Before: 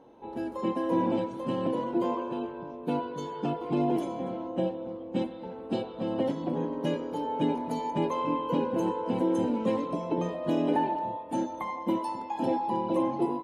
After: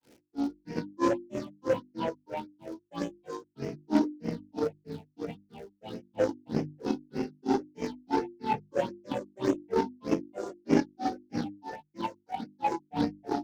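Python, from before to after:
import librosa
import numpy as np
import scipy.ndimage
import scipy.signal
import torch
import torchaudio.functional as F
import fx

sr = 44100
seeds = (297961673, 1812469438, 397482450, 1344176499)

p1 = fx.cvsd(x, sr, bps=32000)
p2 = scipy.signal.sosfilt(scipy.signal.butter(2, 58.0, 'highpass', fs=sr, output='sos'), p1)
p3 = p2 + fx.echo_feedback(p2, sr, ms=118, feedback_pct=56, wet_db=-3.5, dry=0)
p4 = fx.phaser_stages(p3, sr, stages=6, low_hz=150.0, high_hz=1100.0, hz=1.7, feedback_pct=35)
p5 = fx.dmg_crackle(p4, sr, seeds[0], per_s=300.0, level_db=-47.0)
p6 = fx.granulator(p5, sr, seeds[1], grain_ms=220.0, per_s=3.1, spray_ms=15.0, spread_st=3)
p7 = fx.notch(p6, sr, hz=1100.0, q=5.1)
p8 = fx.cheby_harmonics(p7, sr, harmonics=(7,), levels_db=(-23,), full_scale_db=-17.5)
p9 = fx.hum_notches(p8, sr, base_hz=50, count=7)
y = p9 * 10.0 ** (6.5 / 20.0)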